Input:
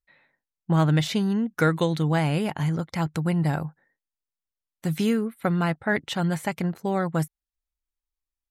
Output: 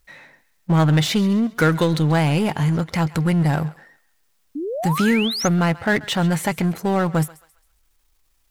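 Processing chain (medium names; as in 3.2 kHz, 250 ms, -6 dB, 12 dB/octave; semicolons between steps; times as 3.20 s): power-law waveshaper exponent 0.7; thinning echo 134 ms, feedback 39%, high-pass 840 Hz, level -17.5 dB; painted sound rise, 4.55–5.48 s, 270–6800 Hz -28 dBFS; trim +2 dB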